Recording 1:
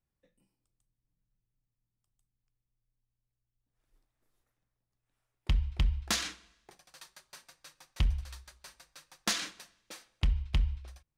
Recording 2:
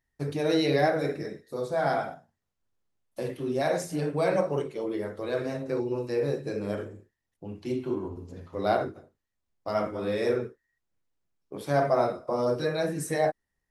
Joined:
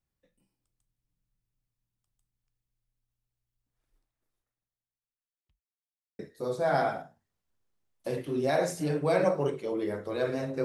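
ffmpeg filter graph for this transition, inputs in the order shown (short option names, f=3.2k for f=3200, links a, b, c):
-filter_complex "[0:a]apad=whole_dur=10.64,atrim=end=10.64,asplit=2[a][b];[a]atrim=end=5.63,asetpts=PTS-STARTPTS,afade=t=out:st=3.67:d=1.96:c=qua[c];[b]atrim=start=5.63:end=6.19,asetpts=PTS-STARTPTS,volume=0[d];[1:a]atrim=start=1.31:end=5.76,asetpts=PTS-STARTPTS,afade=t=in:d=0.004:c=hsin[e];[c][d][e]concat=n=3:v=0:a=1"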